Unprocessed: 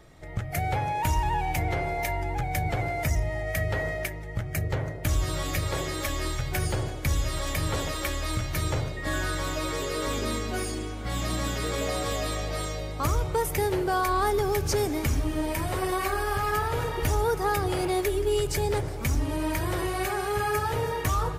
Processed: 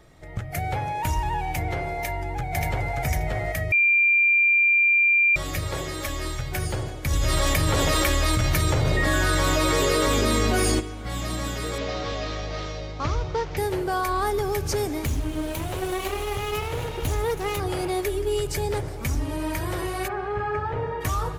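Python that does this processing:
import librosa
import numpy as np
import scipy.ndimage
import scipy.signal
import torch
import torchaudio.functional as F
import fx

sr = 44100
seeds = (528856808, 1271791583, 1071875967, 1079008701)

y = fx.echo_throw(x, sr, start_s=1.94, length_s=1.0, ms=580, feedback_pct=15, wet_db=-1.5)
y = fx.env_flatten(y, sr, amount_pct=100, at=(7.1, 10.79), fade=0.02)
y = fx.cvsd(y, sr, bps=32000, at=(11.78, 13.57))
y = fx.lower_of_two(y, sr, delay_ms=0.3, at=(15.05, 17.6))
y = fx.lowpass(y, sr, hz=1900.0, slope=12, at=(20.07, 21.0), fade=0.02)
y = fx.edit(y, sr, fx.bleep(start_s=3.72, length_s=1.64, hz=2380.0, db=-15.5), tone=tone)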